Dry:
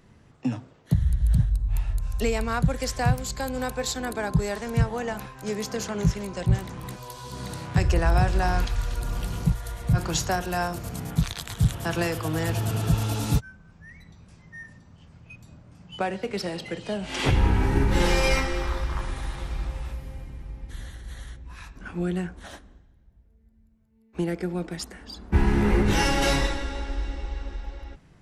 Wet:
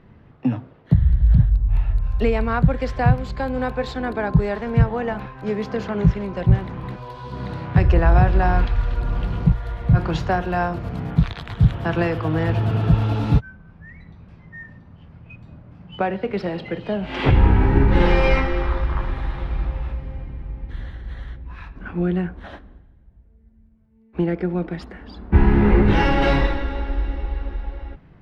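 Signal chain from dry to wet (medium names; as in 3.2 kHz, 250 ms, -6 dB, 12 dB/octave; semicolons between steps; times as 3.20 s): distance through air 370 m; trim +6.5 dB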